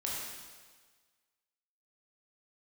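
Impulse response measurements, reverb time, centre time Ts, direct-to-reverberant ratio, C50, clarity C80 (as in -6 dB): 1.5 s, 97 ms, -5.0 dB, -1.5 dB, 1.0 dB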